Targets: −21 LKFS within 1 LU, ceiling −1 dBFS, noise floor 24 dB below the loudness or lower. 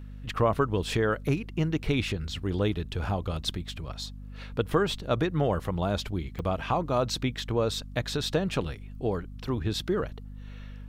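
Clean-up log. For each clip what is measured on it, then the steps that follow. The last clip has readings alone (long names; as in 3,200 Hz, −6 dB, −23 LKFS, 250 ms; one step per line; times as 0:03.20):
number of dropouts 1; longest dropout 4.8 ms; mains hum 50 Hz; hum harmonics up to 250 Hz; level of the hum −39 dBFS; integrated loudness −29.5 LKFS; sample peak −11.0 dBFS; target loudness −21.0 LKFS
→ repair the gap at 0:06.39, 4.8 ms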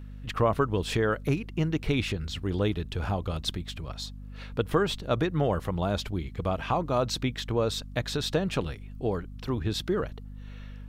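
number of dropouts 0; mains hum 50 Hz; hum harmonics up to 250 Hz; level of the hum −39 dBFS
→ hum removal 50 Hz, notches 5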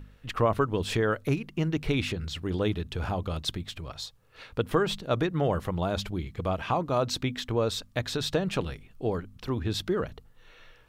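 mains hum none found; integrated loudness −30.0 LKFS; sample peak −11.5 dBFS; target loudness −21.0 LKFS
→ level +9 dB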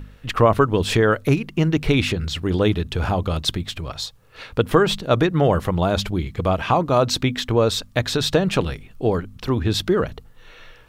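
integrated loudness −21.0 LKFS; sample peak −2.5 dBFS; background noise floor −48 dBFS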